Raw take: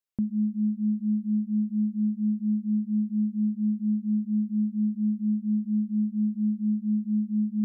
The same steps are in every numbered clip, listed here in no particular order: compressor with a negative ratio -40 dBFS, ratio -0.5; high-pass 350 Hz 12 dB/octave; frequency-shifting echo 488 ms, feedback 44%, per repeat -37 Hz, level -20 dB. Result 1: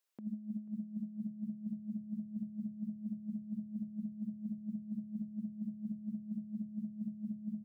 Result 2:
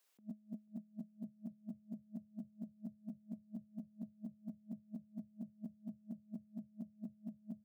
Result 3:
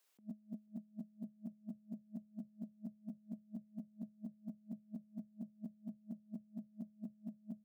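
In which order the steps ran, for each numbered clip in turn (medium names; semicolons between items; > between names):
high-pass > compressor with a negative ratio > frequency-shifting echo; compressor with a negative ratio > high-pass > frequency-shifting echo; compressor with a negative ratio > frequency-shifting echo > high-pass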